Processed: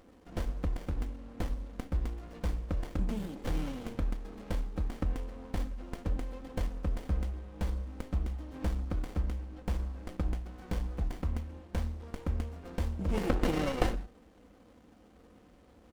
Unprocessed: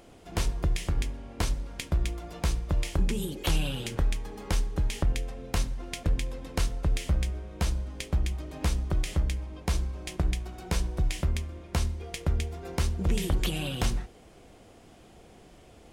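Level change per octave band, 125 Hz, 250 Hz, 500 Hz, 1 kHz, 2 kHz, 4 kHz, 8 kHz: -6.0 dB, -1.5 dB, -1.5 dB, -3.0 dB, -7.0 dB, -12.5 dB, -15.5 dB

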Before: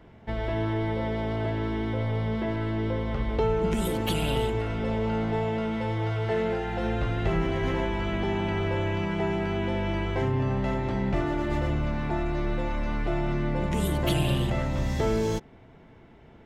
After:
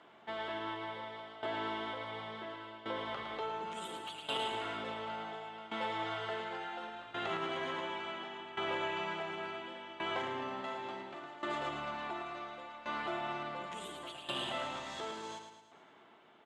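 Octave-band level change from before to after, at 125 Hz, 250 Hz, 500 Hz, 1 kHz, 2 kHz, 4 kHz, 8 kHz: -28.0 dB, -18.0 dB, -13.0 dB, -5.0 dB, -6.0 dB, -3.5 dB, -11.0 dB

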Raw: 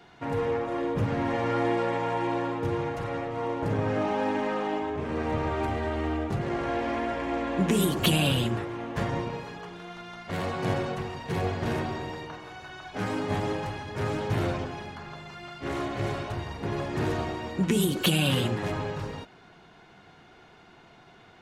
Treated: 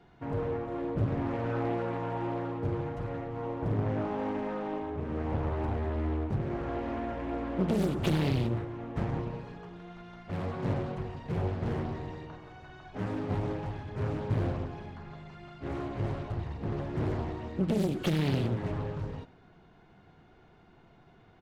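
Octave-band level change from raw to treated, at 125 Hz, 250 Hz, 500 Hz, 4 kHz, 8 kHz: -1.0 dB, -3.5 dB, -5.0 dB, -13.5 dB, under -15 dB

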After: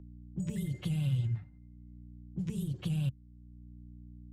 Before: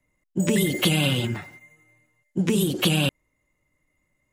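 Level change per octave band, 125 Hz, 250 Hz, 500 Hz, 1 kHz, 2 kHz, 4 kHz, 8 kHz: -6.0 dB, -13.0 dB, -24.0 dB, under -20 dB, -25.5 dB, -25.0 dB, -23.0 dB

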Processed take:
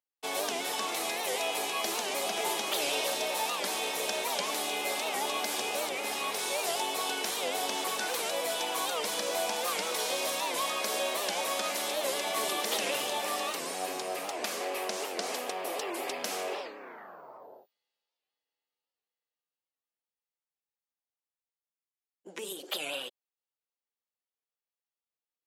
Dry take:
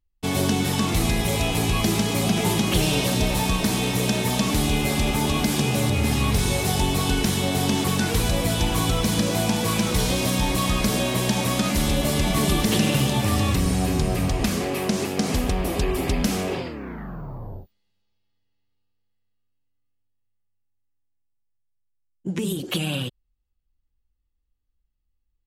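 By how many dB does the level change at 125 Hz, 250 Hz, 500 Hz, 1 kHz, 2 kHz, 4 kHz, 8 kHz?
-37.5 dB, -22.0 dB, -6.5 dB, -4.5 dB, -5.5 dB, -6.0 dB, -6.0 dB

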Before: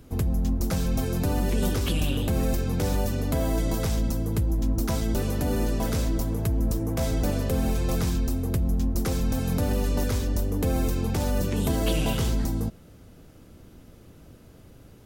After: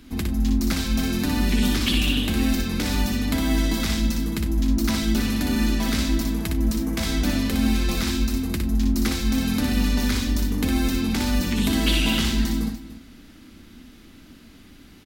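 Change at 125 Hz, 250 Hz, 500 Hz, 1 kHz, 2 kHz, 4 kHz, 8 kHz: -1.0 dB, +6.5 dB, -3.5 dB, +1.5 dB, +9.5 dB, +10.5 dB, +4.5 dB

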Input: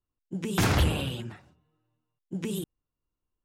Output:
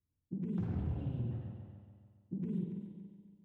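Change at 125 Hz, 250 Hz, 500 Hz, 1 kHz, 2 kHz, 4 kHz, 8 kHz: -7.5 dB, -6.0 dB, -14.5 dB, -23.0 dB, under -30 dB, under -30 dB, under -40 dB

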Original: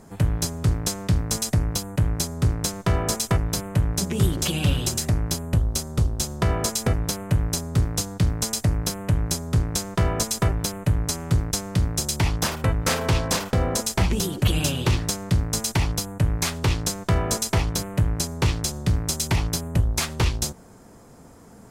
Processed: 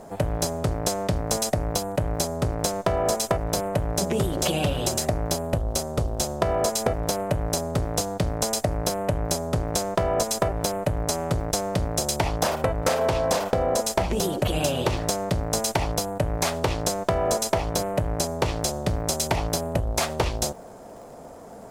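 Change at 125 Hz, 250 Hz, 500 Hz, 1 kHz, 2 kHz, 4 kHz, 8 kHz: -6.0 dB, -2.0 dB, +7.0 dB, +4.5 dB, -1.5 dB, -1.5 dB, -1.5 dB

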